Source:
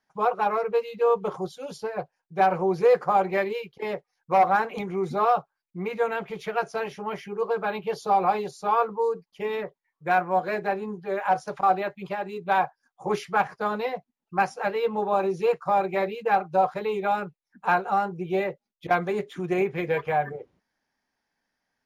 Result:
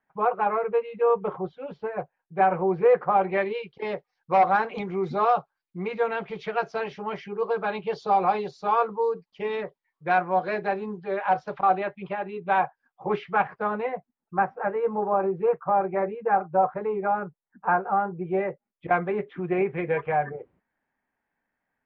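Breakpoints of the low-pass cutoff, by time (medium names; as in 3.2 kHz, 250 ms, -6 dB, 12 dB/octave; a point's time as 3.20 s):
low-pass 24 dB/octave
2.98 s 2.5 kHz
3.87 s 4.8 kHz
10.91 s 4.8 kHz
12.01 s 3.1 kHz
13.31 s 3.1 kHz
14.42 s 1.7 kHz
17.90 s 1.7 kHz
19.01 s 2.5 kHz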